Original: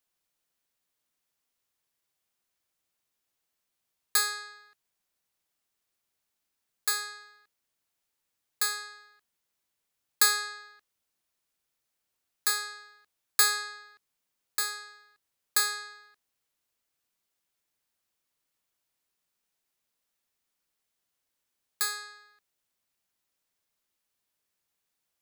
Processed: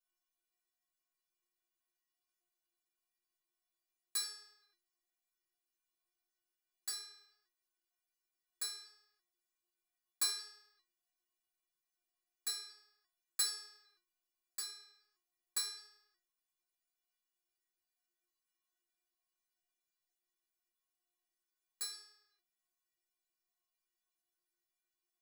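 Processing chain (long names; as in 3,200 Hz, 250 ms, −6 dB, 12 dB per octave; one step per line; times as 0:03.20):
flanger 1.3 Hz, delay 0.4 ms, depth 8.9 ms, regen +17%
floating-point word with a short mantissa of 4 bits
stiff-string resonator 350 Hz, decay 0.35 s, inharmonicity 0.008
level +9.5 dB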